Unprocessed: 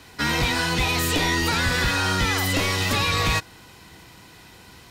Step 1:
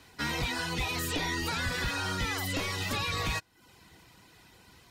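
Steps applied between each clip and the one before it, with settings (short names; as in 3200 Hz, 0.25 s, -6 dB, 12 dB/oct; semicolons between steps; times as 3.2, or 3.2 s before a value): reverb removal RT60 0.55 s; gain -8.5 dB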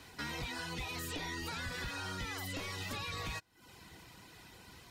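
compressor 2:1, threshold -48 dBFS, peak gain reduction 11.5 dB; gain +1.5 dB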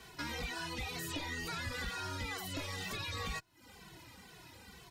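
endless flanger 2.2 ms -2.1 Hz; gain +3.5 dB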